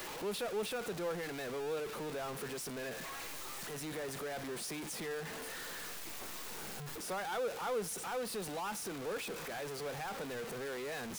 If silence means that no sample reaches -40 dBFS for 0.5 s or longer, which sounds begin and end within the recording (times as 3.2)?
3.71–5.21